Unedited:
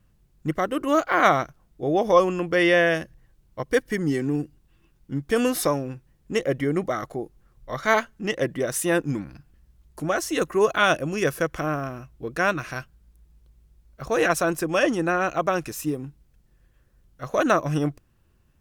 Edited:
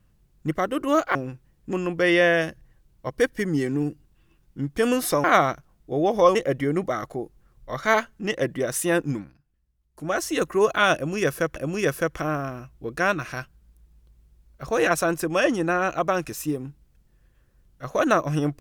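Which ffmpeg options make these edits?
-filter_complex "[0:a]asplit=8[a][b][c][d][e][f][g][h];[a]atrim=end=1.152[i];[b]atrim=start=5.768:end=6.352[j];[c]atrim=start=2.258:end=5.772[k];[d]atrim=start=1.148:end=2.262[l];[e]atrim=start=6.348:end=9.35,asetpts=PTS-STARTPTS,afade=t=out:st=2.762:d=0.24:silence=0.16788[m];[f]atrim=start=9.35:end=9.92,asetpts=PTS-STARTPTS,volume=-15.5dB[n];[g]atrim=start=9.92:end=11.562,asetpts=PTS-STARTPTS,afade=t=in:d=0.24:silence=0.16788[o];[h]atrim=start=10.948[p];[i][j]acrossfade=d=0.004:c1=hsin:c2=hsin[q];[q][k]acrossfade=d=0.004:c1=hsin:c2=hsin[r];[r][l]acrossfade=d=0.004:c1=hsin:c2=hsin[s];[m][n][o]concat=n=3:v=0:a=1[t];[s][t]acrossfade=d=0.004:c1=hsin:c2=hsin[u];[u][p]acrossfade=d=0.004:c1=hsin:c2=hsin"

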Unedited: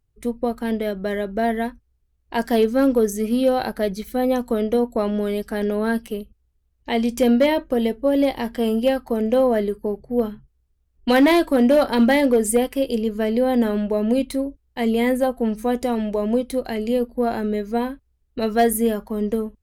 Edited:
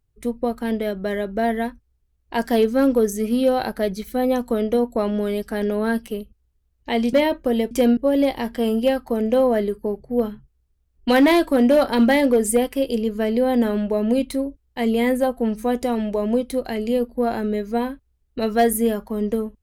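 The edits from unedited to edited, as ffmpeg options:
-filter_complex "[0:a]asplit=4[a][b][c][d];[a]atrim=end=7.132[e];[b]atrim=start=7.388:end=7.972[f];[c]atrim=start=7.128:end=7.392[g];[d]atrim=start=7.968[h];[e][f]acrossfade=d=0.004:c1=hsin:c2=hsin[i];[i][g]acrossfade=d=0.004:c1=hsin:c2=hsin[j];[j][h]acrossfade=d=0.004:c1=hsin:c2=hsin"

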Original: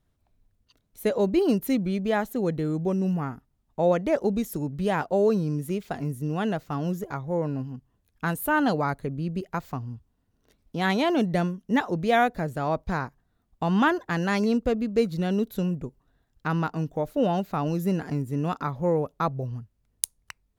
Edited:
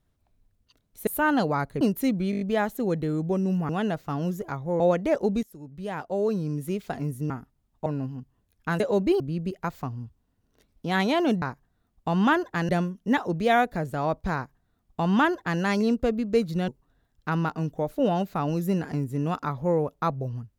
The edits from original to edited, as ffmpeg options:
-filter_complex "[0:a]asplit=18[a][b][c][d][e][f][g][h][i][j][k][l][m][n][o][p][q][r];[a]atrim=end=1.072[s];[b]atrim=start=8.358:end=9.102[t];[c]atrim=start=1.468:end=1.992[u];[d]atrim=start=1.968:end=1.992[v];[e]atrim=start=1.968:end=1.992[w];[f]atrim=start=1.968:end=1.992[x];[g]atrim=start=1.968:end=1.992[y];[h]atrim=start=1.968:end=3.252[z];[i]atrim=start=6.308:end=7.422[aa];[j]atrim=start=3.808:end=4.44,asetpts=PTS-STARTPTS,afade=t=out:st=0.628:d=0.004:c=hsin:silence=0.1[ab];[k]atrim=start=4.44:end=6.312,asetpts=PTS-STARTPTS,afade=t=in:d=1.37:silence=0.1[ac];[l]atrim=start=3.248:end=3.812[ad];[m]atrim=start=7.418:end=8.362[ae];[n]atrim=start=1.068:end=1.472[af];[o]atrim=start=9.098:end=11.322[ag];[p]atrim=start=12.968:end=14.242[ah];[q]atrim=start=11.318:end=15.312[ai];[r]atrim=start=15.858[aj];[s][t]acrossfade=d=0.004:c1=hsin:c2=hsin[ak];[ak][u]acrossfade=d=0.004:c1=hsin:c2=hsin[al];[al][v]acrossfade=d=0.004:c1=hsin:c2=hsin[am];[am][w]acrossfade=d=0.004:c1=hsin:c2=hsin[an];[an][x]acrossfade=d=0.004:c1=hsin:c2=hsin[ao];[ao][y]acrossfade=d=0.004:c1=hsin:c2=hsin[ap];[ap][z]acrossfade=d=0.004:c1=hsin:c2=hsin[aq];[aq][aa]acrossfade=d=0.004:c1=hsin:c2=hsin[ar];[ab][ac]concat=n=2:v=0:a=1[as];[ar][as]acrossfade=d=0.004:c1=hsin:c2=hsin[at];[at][ad]acrossfade=d=0.004:c1=hsin:c2=hsin[au];[au][ae]acrossfade=d=0.004:c1=hsin:c2=hsin[av];[av][af]acrossfade=d=0.004:c1=hsin:c2=hsin[aw];[aw][ag]acrossfade=d=0.004:c1=hsin:c2=hsin[ax];[ax][ah]acrossfade=d=0.004:c1=hsin:c2=hsin[ay];[ay][ai]acrossfade=d=0.004:c1=hsin:c2=hsin[az];[az][aj]acrossfade=d=0.004:c1=hsin:c2=hsin"

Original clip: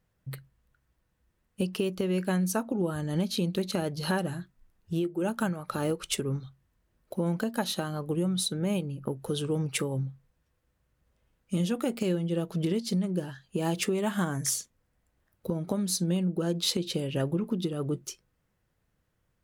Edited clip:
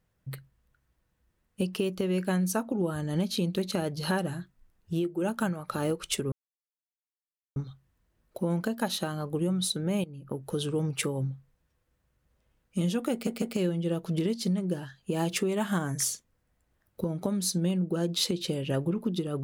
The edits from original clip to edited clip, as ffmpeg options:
-filter_complex "[0:a]asplit=5[a][b][c][d][e];[a]atrim=end=6.32,asetpts=PTS-STARTPTS,afade=t=out:st=6.316:d=0.004:c=hsin,apad=pad_dur=1.24[f];[b]atrim=start=6.32:end=8.8,asetpts=PTS-STARTPTS,afade=t=in:d=0.004:c=hsin,afade=t=out:st=2.476:d=0.004:c=hsin:silence=0.199526[g];[c]atrim=start=8.8:end=12.032,asetpts=PTS-STARTPTS,afade=t=in:d=0.43:silence=0.199526[h];[d]atrim=start=11.878:end=12.032[i];[e]atrim=start=11.878[j];[f][g][h]concat=n=3:v=0:a=1[k];[k][i]acrossfade=d=0.004:c1=hsin:c2=hsin[l];[l][j]acrossfade=d=0.004:c1=hsin:c2=hsin"

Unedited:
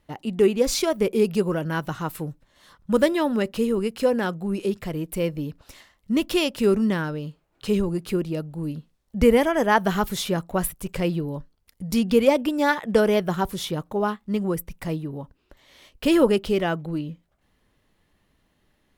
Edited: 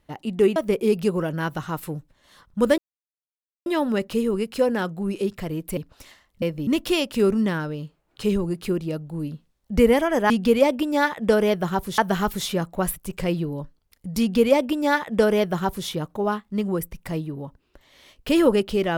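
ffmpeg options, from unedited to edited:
-filter_complex "[0:a]asplit=8[a][b][c][d][e][f][g][h];[a]atrim=end=0.562[i];[b]atrim=start=0.878:end=3.1,asetpts=PTS-STARTPTS,afade=t=out:st=2.218:d=0.004:c=hsin,apad=pad_dur=0.88[j];[c]atrim=start=3.1:end=5.212,asetpts=PTS-STARTPTS,afade=t=in:d=0.004:c=hsin[k];[d]atrim=start=5.458:end=6.112[l];[e]atrim=start=5.208:end=5.462[m];[f]atrim=start=6.108:end=9.742[n];[g]atrim=start=11.958:end=13.642[o];[h]atrim=start=9.738[p];[j][k]concat=n=2:v=0:a=1[q];[i][q]acrossfade=d=0.004:c1=hsin:c2=hsin[r];[r][l]acrossfade=d=0.004:c1=hsin:c2=hsin[s];[s][m]acrossfade=d=0.004:c1=hsin:c2=hsin[t];[t][n]acrossfade=d=0.004:c1=hsin:c2=hsin[u];[u][o]acrossfade=d=0.004:c1=hsin:c2=hsin[v];[v][p]acrossfade=d=0.004:c1=hsin:c2=hsin"

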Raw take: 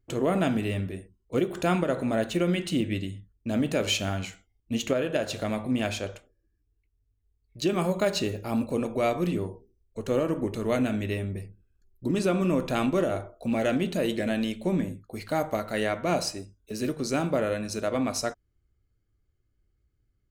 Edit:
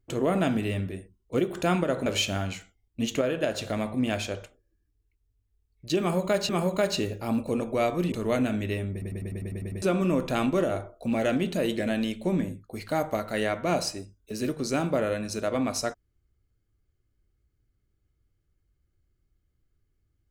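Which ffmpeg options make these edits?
-filter_complex "[0:a]asplit=13[a][b][c][d][e][f][g][h][i][j][k][l][m];[a]atrim=end=2.062[n];[b]atrim=start=3.778:end=8.212[o];[c]atrim=start=7.718:end=9.352[p];[d]atrim=start=10.518:end=11.422[q];[e]atrim=start=11.318:end=11.422[r];[f]atrim=start=11.318:end=11.422[s];[g]atrim=start=11.318:end=11.422[t];[h]atrim=start=11.318:end=11.422[u];[i]atrim=start=11.318:end=11.422[v];[j]atrim=start=11.318:end=11.422[w];[k]atrim=start=11.318:end=11.422[x];[l]atrim=start=11.318:end=11.422[y];[m]atrim=start=12.218[z];[n][o]acrossfade=d=0.004:c1=hsin:c2=hsin[aa];[aa][p]acrossfade=d=0.004:c1=hsin:c2=hsin[ab];[ab][q]acrossfade=d=0.004:c1=hsin:c2=hsin[ac];[ac][r]acrossfade=d=0.004:c1=hsin:c2=hsin[ad];[ad][s]acrossfade=d=0.004:c1=hsin:c2=hsin[ae];[ae][t]acrossfade=d=0.004:c1=hsin:c2=hsin[af];[af][u]acrossfade=d=0.004:c1=hsin:c2=hsin[ag];[ag][v]acrossfade=d=0.004:c1=hsin:c2=hsin[ah];[ah][w]acrossfade=d=0.004:c1=hsin:c2=hsin[ai];[ai][x]acrossfade=d=0.004:c1=hsin:c2=hsin[aj];[aj][y]acrossfade=d=0.004:c1=hsin:c2=hsin[ak];[ak][z]acrossfade=d=0.004:c1=hsin:c2=hsin"

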